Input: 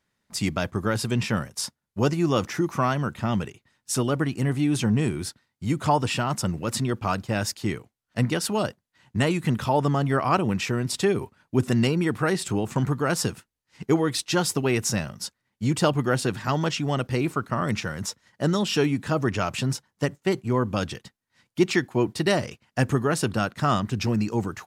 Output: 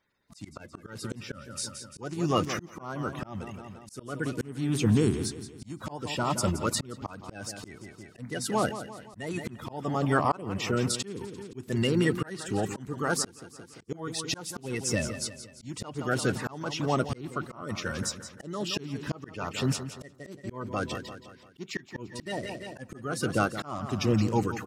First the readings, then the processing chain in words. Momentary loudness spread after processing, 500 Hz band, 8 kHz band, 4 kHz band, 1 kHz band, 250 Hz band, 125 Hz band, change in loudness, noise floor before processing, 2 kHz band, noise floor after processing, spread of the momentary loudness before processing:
16 LU, -6.5 dB, -3.5 dB, -5.0 dB, -6.0 dB, -6.5 dB, -7.0 dB, -6.0 dB, -81 dBFS, -5.5 dB, -54 dBFS, 8 LU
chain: coarse spectral quantiser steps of 30 dB; on a send: feedback delay 172 ms, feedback 47%, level -12.5 dB; on the sum: slow attack 479 ms

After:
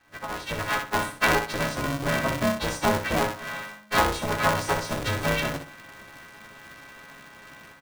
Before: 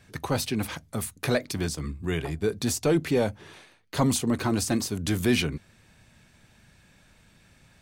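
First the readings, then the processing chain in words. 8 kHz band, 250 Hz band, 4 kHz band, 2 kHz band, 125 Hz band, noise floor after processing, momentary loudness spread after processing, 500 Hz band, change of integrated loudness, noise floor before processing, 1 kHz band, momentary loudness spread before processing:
-3.0 dB, -4.0 dB, +2.5 dB, +9.0 dB, -2.5 dB, -48 dBFS, 21 LU, +0.5 dB, +1.5 dB, -60 dBFS, +10.0 dB, 9 LU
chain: partials quantised in pitch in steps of 3 st; low-pass 1.2 kHz 12 dB/octave; in parallel at -11.5 dB: companded quantiser 4-bit; on the sum: compression 6:1, threshold -30 dBFS, peak gain reduction 14 dB; peaking EQ 210 Hz -14 dB 2.4 oct; level rider gain up to 16 dB; bass shelf 150 Hz -7 dB; doubling 16 ms -11 dB; on a send: feedback delay 62 ms, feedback 28%, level -7.5 dB; on the sum: polarity switched at an audio rate 210 Hz

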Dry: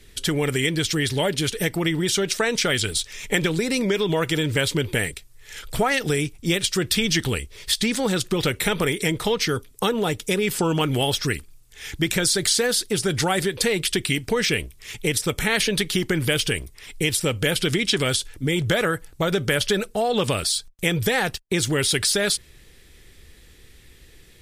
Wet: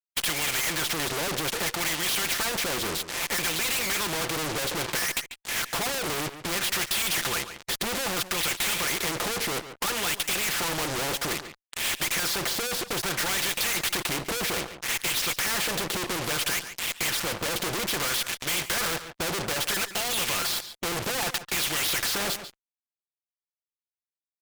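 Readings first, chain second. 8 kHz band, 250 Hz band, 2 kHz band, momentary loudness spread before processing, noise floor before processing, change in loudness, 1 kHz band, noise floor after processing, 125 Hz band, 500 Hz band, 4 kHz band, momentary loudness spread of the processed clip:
-1.5 dB, -12.0 dB, -3.0 dB, 5 LU, -50 dBFS, -4.0 dB, -2.0 dB, under -85 dBFS, -13.5 dB, -10.5 dB, -3.0 dB, 5 LU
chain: gate -37 dBFS, range -7 dB; peaking EQ 9.1 kHz -12.5 dB 0.9 oct; comb 5.8 ms, depth 67%; in parallel at 0 dB: compression 6:1, threshold -28 dBFS, peak gain reduction 14 dB; on the sum: wah-wah 0.61 Hz 430–2900 Hz, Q 2.2; fuzz box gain 46 dB, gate -49 dBFS; on a send: delay 142 ms -21.5 dB; on the sum: spectrum-flattening compressor 2:1; trim -4 dB

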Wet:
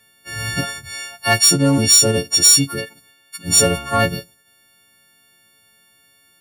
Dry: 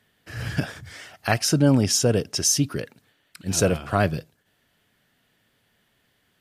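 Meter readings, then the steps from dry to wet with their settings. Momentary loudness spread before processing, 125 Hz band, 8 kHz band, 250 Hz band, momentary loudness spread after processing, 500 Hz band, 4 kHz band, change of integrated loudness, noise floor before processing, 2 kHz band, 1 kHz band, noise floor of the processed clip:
18 LU, +1.5 dB, +10.0 dB, +2.5 dB, 20 LU, +3.0 dB, +13.0 dB, +8.5 dB, -68 dBFS, +8.0 dB, +6.0 dB, -56 dBFS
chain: partials quantised in pitch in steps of 4 st; Chebyshev shaper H 5 -15 dB, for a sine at 1 dBFS; trim -2.5 dB

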